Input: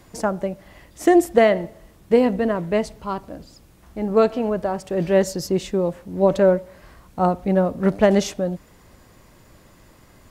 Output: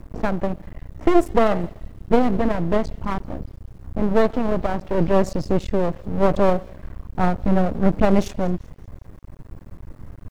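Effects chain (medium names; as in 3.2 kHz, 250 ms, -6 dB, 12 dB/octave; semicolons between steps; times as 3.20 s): RIAA curve playback; level-controlled noise filter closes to 1.6 kHz, open at -8.5 dBFS; treble shelf 5.1 kHz +9.5 dB; in parallel at -1 dB: compression, threshold -18 dBFS, peak gain reduction 12 dB; on the sum: half-wave rectifier; bit crusher 10-bit; on a send: feedback echo behind a high-pass 193 ms, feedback 43%, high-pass 3.2 kHz, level -19 dB; on the sum: trim -3 dB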